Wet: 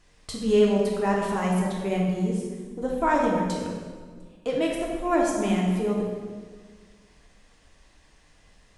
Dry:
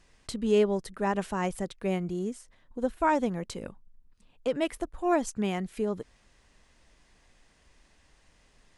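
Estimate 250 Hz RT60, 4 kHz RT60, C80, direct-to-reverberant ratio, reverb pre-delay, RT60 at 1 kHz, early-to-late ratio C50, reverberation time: 2.0 s, 1.3 s, 3.0 dB, -2.5 dB, 3 ms, 1.5 s, 1.0 dB, 1.6 s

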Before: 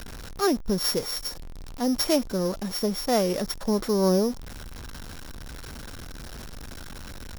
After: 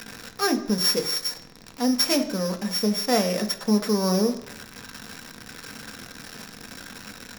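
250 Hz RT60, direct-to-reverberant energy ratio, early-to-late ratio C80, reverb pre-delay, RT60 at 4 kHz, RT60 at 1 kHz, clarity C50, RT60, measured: 0.85 s, 5.0 dB, 15.5 dB, 3 ms, 0.90 s, 1.0 s, 12.5 dB, 0.95 s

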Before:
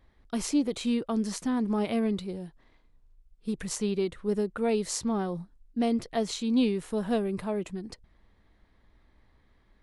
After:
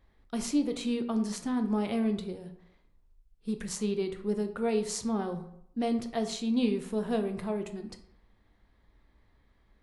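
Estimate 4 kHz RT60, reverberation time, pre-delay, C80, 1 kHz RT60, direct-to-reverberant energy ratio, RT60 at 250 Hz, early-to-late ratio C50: 0.45 s, 0.70 s, 11 ms, 14.5 dB, 0.75 s, 7.0 dB, 0.70 s, 11.5 dB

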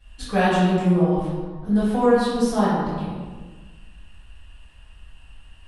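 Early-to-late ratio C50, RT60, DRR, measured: -2.0 dB, 1.4 s, -16.5 dB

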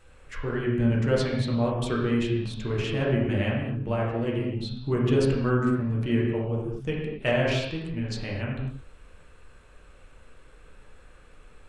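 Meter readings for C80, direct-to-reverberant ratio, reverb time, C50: 3.5 dB, -4.0 dB, not exponential, 1.0 dB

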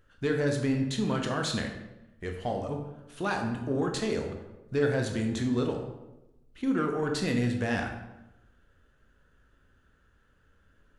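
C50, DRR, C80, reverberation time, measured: 6.0 dB, 2.5 dB, 8.0 dB, 0.95 s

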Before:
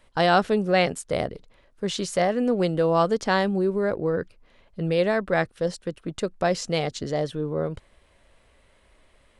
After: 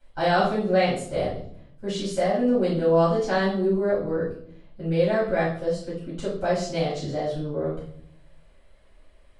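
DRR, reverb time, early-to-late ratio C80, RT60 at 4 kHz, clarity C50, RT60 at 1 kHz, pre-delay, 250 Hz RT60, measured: -12.5 dB, 0.65 s, 8.5 dB, 0.50 s, 2.5 dB, 0.55 s, 4 ms, 1.0 s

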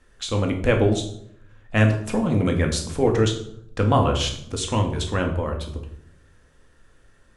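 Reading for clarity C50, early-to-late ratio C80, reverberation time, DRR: 8.0 dB, 11.5 dB, 0.70 s, 2.5 dB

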